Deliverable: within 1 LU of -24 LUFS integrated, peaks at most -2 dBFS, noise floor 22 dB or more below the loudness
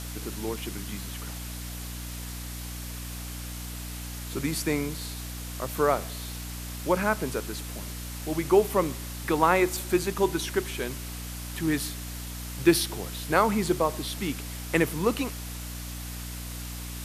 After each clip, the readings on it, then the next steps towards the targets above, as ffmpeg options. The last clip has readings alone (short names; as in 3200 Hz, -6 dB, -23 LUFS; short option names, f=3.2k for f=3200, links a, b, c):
hum 60 Hz; harmonics up to 300 Hz; hum level -36 dBFS; noise floor -37 dBFS; noise floor target -52 dBFS; loudness -29.5 LUFS; peak -6.5 dBFS; loudness target -24.0 LUFS
-> -af "bandreject=f=60:t=h:w=6,bandreject=f=120:t=h:w=6,bandreject=f=180:t=h:w=6,bandreject=f=240:t=h:w=6,bandreject=f=300:t=h:w=6"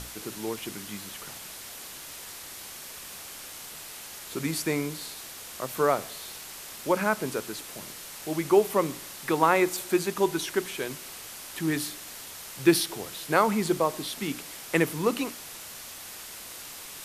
hum none; noise floor -43 dBFS; noise floor target -52 dBFS
-> -af "afftdn=nr=9:nf=-43"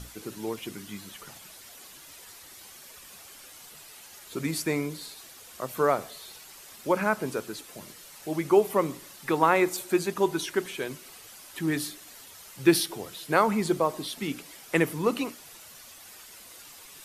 noise floor -49 dBFS; noise floor target -50 dBFS
-> -af "afftdn=nr=6:nf=-49"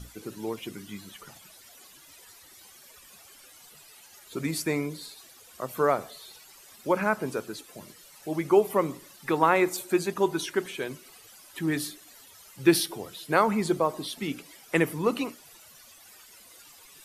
noise floor -53 dBFS; loudness -28.0 LUFS; peak -7.0 dBFS; loudness target -24.0 LUFS
-> -af "volume=4dB"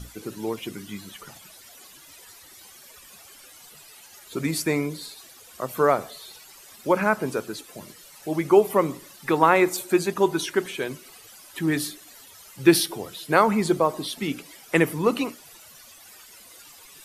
loudness -24.0 LUFS; peak -3.0 dBFS; noise floor -49 dBFS